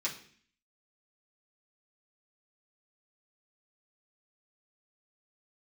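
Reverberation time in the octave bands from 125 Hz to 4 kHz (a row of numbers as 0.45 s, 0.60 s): 0.65 s, 0.70 s, 0.55 s, 0.50 s, 0.60 s, 0.55 s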